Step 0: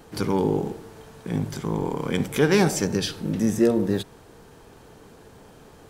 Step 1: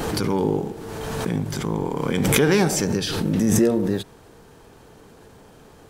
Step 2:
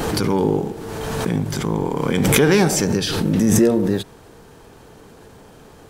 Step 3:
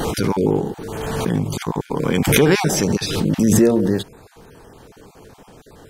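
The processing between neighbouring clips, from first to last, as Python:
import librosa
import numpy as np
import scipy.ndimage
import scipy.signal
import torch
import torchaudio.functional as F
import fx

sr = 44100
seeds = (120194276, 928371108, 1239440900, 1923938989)

y1 = fx.pre_swell(x, sr, db_per_s=23.0)
y2 = 10.0 ** (-3.5 / 20.0) * np.tanh(y1 / 10.0 ** (-3.5 / 20.0))
y2 = y2 * librosa.db_to_amplitude(3.5)
y3 = fx.spec_dropout(y2, sr, seeds[0], share_pct=23)
y3 = y3 * librosa.db_to_amplitude(1.0)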